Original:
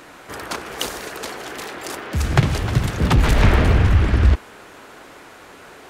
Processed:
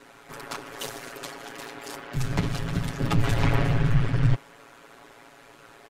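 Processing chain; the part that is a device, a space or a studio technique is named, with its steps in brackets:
ring-modulated robot voice (ring modulation 57 Hz; comb filter 7.2 ms, depth 90%)
level −7.5 dB

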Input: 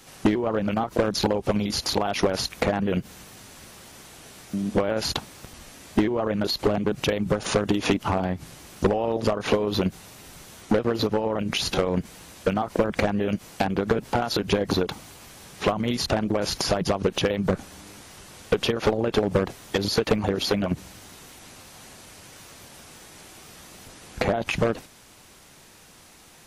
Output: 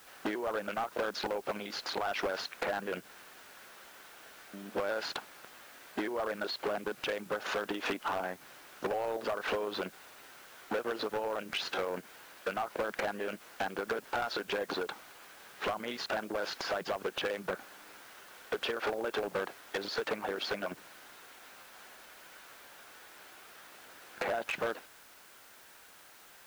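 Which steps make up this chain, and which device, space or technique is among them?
drive-through speaker (band-pass filter 460–3,500 Hz; parametric band 1,500 Hz +7 dB 0.47 octaves; hard clipping −21.5 dBFS, distortion −10 dB; white noise bed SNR 21 dB)
level −6 dB

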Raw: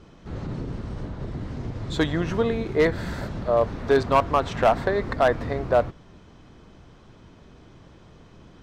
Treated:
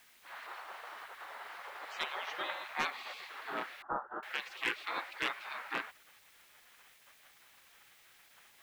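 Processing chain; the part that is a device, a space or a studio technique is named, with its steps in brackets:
gate on every frequency bin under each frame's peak −25 dB weak
aircraft radio (band-pass filter 370–2,700 Hz; hard clipping −29.5 dBFS, distortion −17 dB; white noise bed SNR 23 dB)
0:03.82–0:04.23: elliptic low-pass filter 1,400 Hz, stop band 40 dB
level +5 dB

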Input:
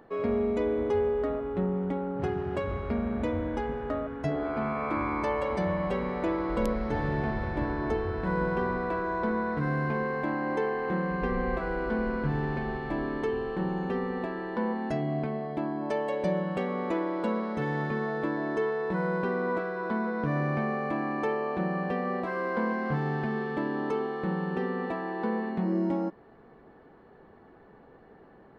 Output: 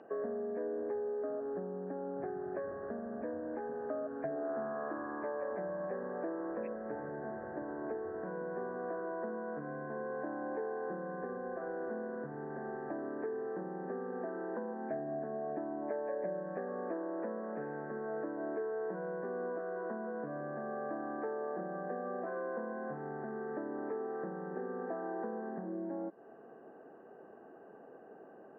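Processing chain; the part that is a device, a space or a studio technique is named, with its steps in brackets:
hearing aid with frequency lowering (hearing-aid frequency compression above 1,500 Hz 4 to 1; downward compressor, threshold −36 dBFS, peak gain reduction 12.5 dB; loudspeaker in its box 300–5,200 Hz, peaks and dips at 660 Hz +4 dB, 960 Hz −8 dB, 1,400 Hz −7 dB, 2,200 Hz −10 dB)
level +2 dB

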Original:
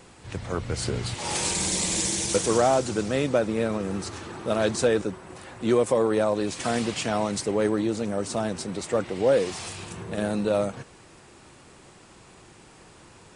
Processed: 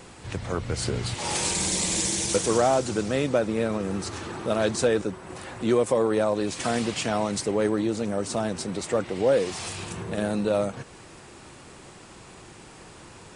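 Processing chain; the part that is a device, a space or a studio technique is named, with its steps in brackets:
parallel compression (in parallel at −0.5 dB: downward compressor, threshold −37 dBFS, peak gain reduction 19 dB)
on the sum: level −1.5 dB

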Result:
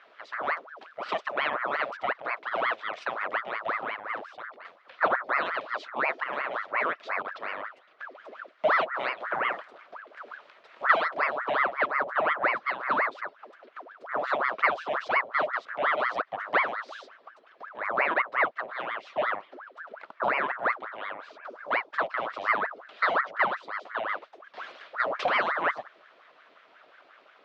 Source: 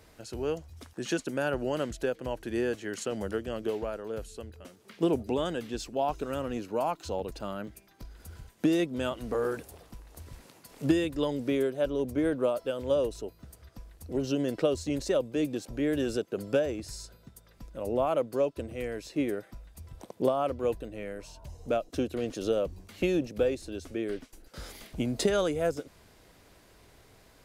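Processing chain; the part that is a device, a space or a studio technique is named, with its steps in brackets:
voice changer toy (ring modulator whose carrier an LFO sweeps 990 Hz, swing 70%, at 5.6 Hz; loudspeaker in its box 490–3,600 Hz, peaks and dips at 610 Hz +5 dB, 870 Hz −5 dB, 1,300 Hz +3 dB)
level +5 dB

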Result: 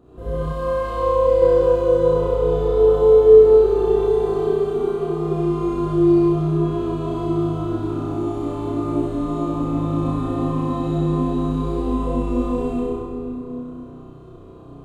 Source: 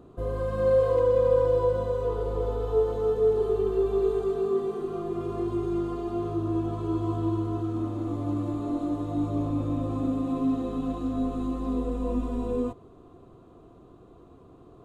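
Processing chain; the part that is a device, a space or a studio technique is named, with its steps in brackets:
tunnel (flutter between parallel walls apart 5.5 metres, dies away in 1.1 s; convolution reverb RT60 2.6 s, pre-delay 44 ms, DRR −7 dB)
0:00.52–0:01.42: graphic EQ with 15 bands 160 Hz −9 dB, 400 Hz −10 dB, 1,600 Hz −5 dB
level −3.5 dB

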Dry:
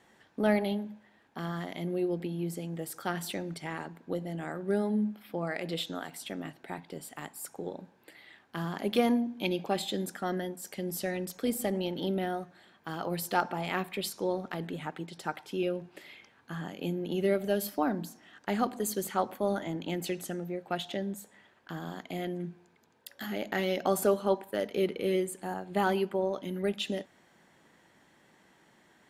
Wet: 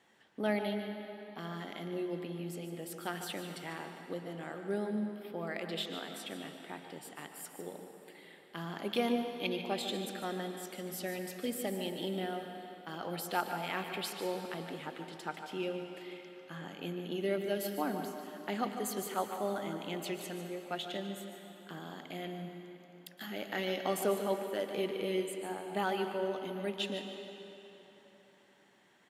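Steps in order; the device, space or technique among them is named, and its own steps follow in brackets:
PA in a hall (high-pass filter 150 Hz 6 dB per octave; parametric band 3,000 Hz +4 dB 0.89 octaves; single-tap delay 148 ms −11.5 dB; convolution reverb RT60 3.6 s, pre-delay 108 ms, DRR 6.5 dB)
level −5.5 dB

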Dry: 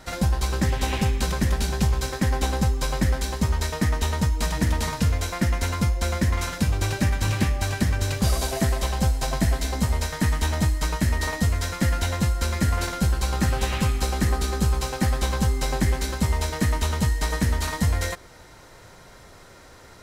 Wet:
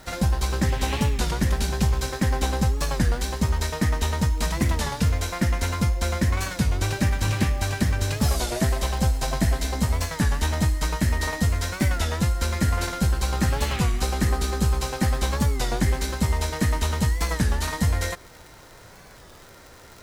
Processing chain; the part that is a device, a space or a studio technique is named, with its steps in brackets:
warped LP (wow of a warped record 33 1/3 rpm, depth 160 cents; surface crackle 91 per second −35 dBFS; white noise bed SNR 40 dB)

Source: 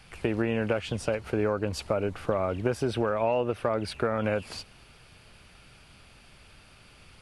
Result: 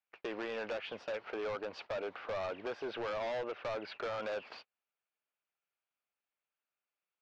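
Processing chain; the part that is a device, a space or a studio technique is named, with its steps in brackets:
walkie-talkie (band-pass filter 540–2,600 Hz; hard clipping −32.5 dBFS, distortion −6 dB; noise gate −47 dBFS, range −35 dB)
low-pass filter 5,800 Hz 24 dB per octave
level −2 dB

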